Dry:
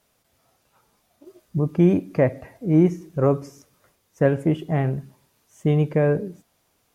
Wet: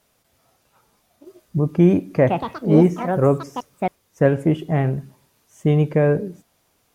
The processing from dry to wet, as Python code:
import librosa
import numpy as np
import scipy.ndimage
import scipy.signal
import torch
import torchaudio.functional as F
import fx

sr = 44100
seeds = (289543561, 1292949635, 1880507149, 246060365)

y = fx.echo_pitch(x, sr, ms=129, semitones=5, count=3, db_per_echo=-6.0, at=(2.14, 4.29))
y = y * 10.0 ** (2.5 / 20.0)